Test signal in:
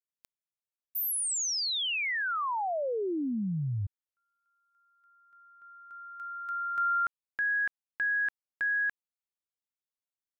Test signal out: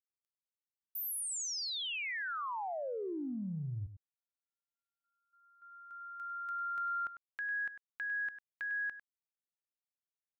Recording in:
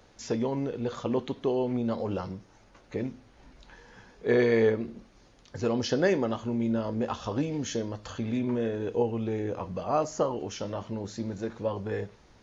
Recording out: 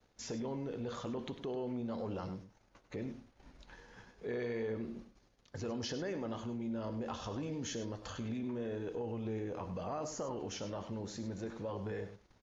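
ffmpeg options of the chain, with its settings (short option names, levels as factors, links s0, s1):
-filter_complex "[0:a]agate=range=0.0224:threshold=0.002:ratio=3:release=32:detection=peak,acompressor=threshold=0.02:ratio=5:attack=3.6:release=24:knee=6,asplit=2[s0][s1];[s1]aecho=0:1:100:0.266[s2];[s0][s2]amix=inputs=2:normalize=0,volume=0.668"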